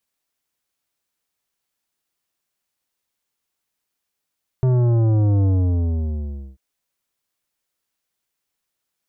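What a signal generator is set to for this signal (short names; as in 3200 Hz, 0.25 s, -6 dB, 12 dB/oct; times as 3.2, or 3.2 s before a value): sub drop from 130 Hz, over 1.94 s, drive 11.5 dB, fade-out 1.12 s, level -15 dB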